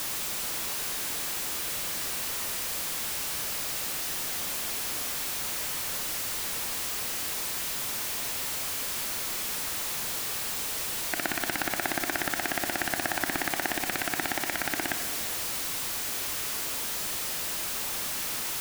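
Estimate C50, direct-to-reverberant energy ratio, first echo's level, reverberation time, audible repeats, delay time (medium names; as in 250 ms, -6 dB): 7.5 dB, 6.0 dB, no echo, 2.2 s, no echo, no echo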